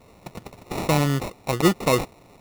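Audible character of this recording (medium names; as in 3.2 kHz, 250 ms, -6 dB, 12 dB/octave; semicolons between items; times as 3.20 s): aliases and images of a low sample rate 1.6 kHz, jitter 0%; Vorbis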